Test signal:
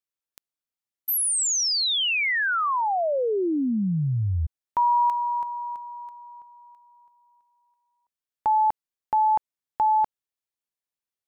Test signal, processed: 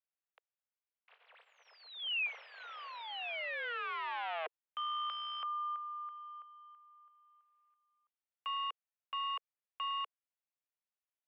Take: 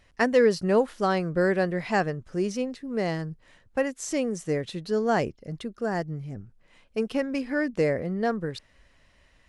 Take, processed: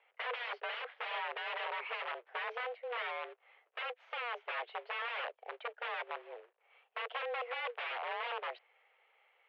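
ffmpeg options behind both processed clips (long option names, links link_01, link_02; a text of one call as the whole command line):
ffmpeg -i in.wav -filter_complex "[0:a]acrossover=split=2200[link_01][link_02];[link_01]aeval=exprs='(mod(21.1*val(0)+1,2)-1)/21.1':channel_layout=same[link_03];[link_02]acompressor=threshold=-35dB:ratio=5:attack=8.1:release=365:knee=1:detection=peak[link_04];[link_03][link_04]amix=inputs=2:normalize=0,acrusher=bits=3:mode=log:mix=0:aa=0.000001,highpass=frequency=230:width_type=q:width=0.5412,highpass=frequency=230:width_type=q:width=1.307,lowpass=frequency=2800:width_type=q:width=0.5176,lowpass=frequency=2800:width_type=q:width=0.7071,lowpass=frequency=2800:width_type=q:width=1.932,afreqshift=240,volume=-5.5dB" out.wav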